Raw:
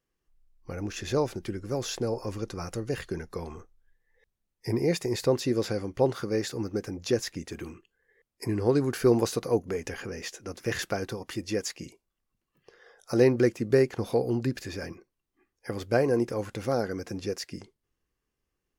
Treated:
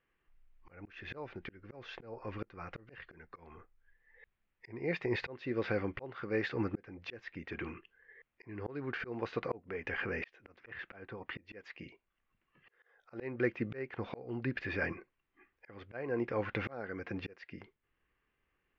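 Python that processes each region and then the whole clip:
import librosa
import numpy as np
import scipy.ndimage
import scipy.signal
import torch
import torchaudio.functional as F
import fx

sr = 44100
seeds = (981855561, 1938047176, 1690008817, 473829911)

y = fx.chain(x, sr, fx.lowpass(hz=4600.0, slope=12),
    fx.overload_stage(gain_db=21.0),
    fx.high_shelf(hz=2800.0, db=-5.5), at=(10.63, 11.45))
y = scipy.signal.sosfilt(scipy.signal.cheby2(4, 70, 9200.0, 'lowpass', fs=sr, output='sos'), y)
y = fx.tilt_shelf(y, sr, db=-8.5, hz=1400.0)
y = fx.auto_swell(y, sr, attack_ms=797.0)
y = y * 10.0 ** (8.0 / 20.0)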